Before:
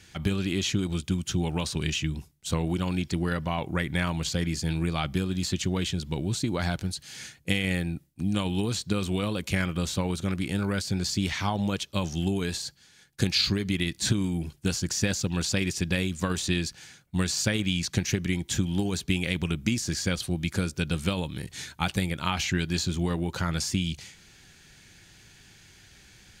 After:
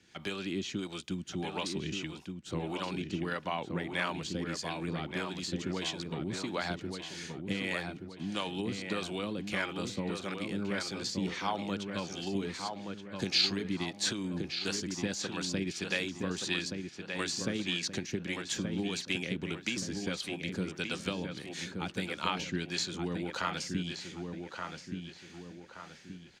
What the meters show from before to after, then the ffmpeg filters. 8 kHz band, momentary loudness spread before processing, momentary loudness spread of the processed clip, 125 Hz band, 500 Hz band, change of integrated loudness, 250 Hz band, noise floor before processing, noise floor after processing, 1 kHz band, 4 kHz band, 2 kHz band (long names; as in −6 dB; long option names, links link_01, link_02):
−8.0 dB, 4 LU, 8 LU, −12.0 dB, −4.0 dB, −6.5 dB, −7.0 dB, −57 dBFS, −51 dBFS, −3.0 dB, −4.0 dB, −4.0 dB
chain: -filter_complex "[0:a]acrossover=split=190 7800:gain=0.141 1 0.2[link_01][link_02][link_03];[link_01][link_02][link_03]amix=inputs=3:normalize=0,acrossover=split=420[link_04][link_05];[link_04]aeval=exprs='val(0)*(1-0.7/2+0.7/2*cos(2*PI*1.6*n/s))':channel_layout=same[link_06];[link_05]aeval=exprs='val(0)*(1-0.7/2-0.7/2*cos(2*PI*1.6*n/s))':channel_layout=same[link_07];[link_06][link_07]amix=inputs=2:normalize=0,asplit=2[link_08][link_09];[link_09]adelay=1175,lowpass=frequency=2700:poles=1,volume=-5dB,asplit=2[link_10][link_11];[link_11]adelay=1175,lowpass=frequency=2700:poles=1,volume=0.44,asplit=2[link_12][link_13];[link_13]adelay=1175,lowpass=frequency=2700:poles=1,volume=0.44,asplit=2[link_14][link_15];[link_15]adelay=1175,lowpass=frequency=2700:poles=1,volume=0.44,asplit=2[link_16][link_17];[link_17]adelay=1175,lowpass=frequency=2700:poles=1,volume=0.44[link_18];[link_10][link_12][link_14][link_16][link_18]amix=inputs=5:normalize=0[link_19];[link_08][link_19]amix=inputs=2:normalize=0,volume=-1.5dB"